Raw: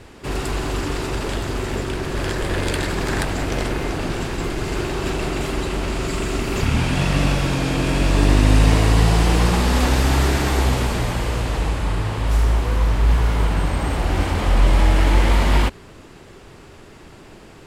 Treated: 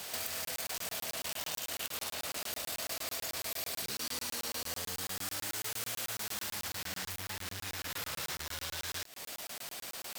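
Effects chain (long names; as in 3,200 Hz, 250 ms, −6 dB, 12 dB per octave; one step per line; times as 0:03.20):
spectral tilt +4.5 dB per octave
downward compressor 8 to 1, threshold −35 dBFS, peak gain reduction 21.5 dB
wrong playback speed 45 rpm record played at 78 rpm
regular buffer underruns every 0.11 s, samples 1,024, zero, from 0:00.45
saturating transformer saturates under 2,700 Hz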